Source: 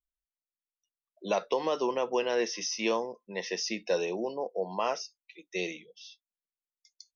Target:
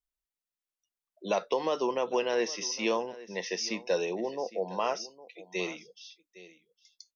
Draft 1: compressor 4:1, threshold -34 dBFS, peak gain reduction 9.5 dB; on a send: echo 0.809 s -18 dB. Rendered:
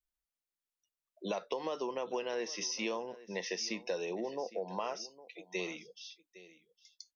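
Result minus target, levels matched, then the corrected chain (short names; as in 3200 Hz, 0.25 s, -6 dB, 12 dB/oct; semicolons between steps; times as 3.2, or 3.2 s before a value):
compressor: peak gain reduction +9.5 dB
on a send: echo 0.809 s -18 dB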